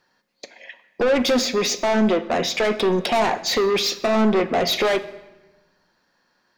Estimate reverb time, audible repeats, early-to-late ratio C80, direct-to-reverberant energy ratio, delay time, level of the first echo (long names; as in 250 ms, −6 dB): 1.1 s, no echo audible, 16.0 dB, 11.0 dB, no echo audible, no echo audible